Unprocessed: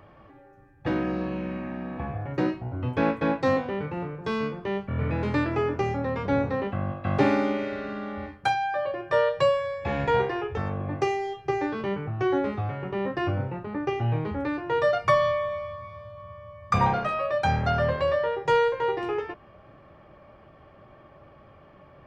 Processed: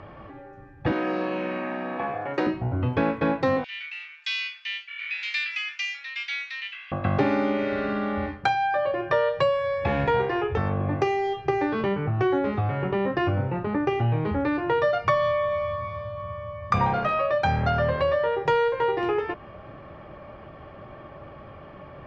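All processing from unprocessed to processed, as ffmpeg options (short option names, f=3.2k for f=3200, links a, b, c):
-filter_complex "[0:a]asettb=1/sr,asplit=3[a][b][c];[a]atrim=end=0.924[d];[b]atrim=start=0.92:end=2.47,asetpts=PTS-STARTPTS,afade=t=in:d=0.004:c=qsin,afade=t=out:st=1.546:d=0.004:c=qsin,highpass=380,highshelf=f=5.5k:g=5.5[e];[c]atrim=start=2.466[f];[d][e]acrossfade=d=0.004:c1=hsin:c2=qsin[g];[g][f]acrossfade=d=0.004:c1=qsin:c2=hsin,asettb=1/sr,asplit=3[h][i][j];[h]atrim=end=3.644[k];[i]atrim=start=3.64:end=6.92,asetpts=PTS-STARTPTS,afade=t=in:d=0.004:c=qsin,afade=t=out:st=3.276:d=0.004:c=qsin,asuperpass=centerf=4300:order=8:qfactor=0.77,acontrast=70[l];[j]atrim=start=6.916[m];[k][l]acrossfade=d=0.004:c1=hsin:c2=qsin[n];[n][m]acrossfade=d=0.004:c1=qsin:c2=hsin,lowpass=4.7k,acompressor=threshold=-32dB:ratio=2.5,volume=8.5dB"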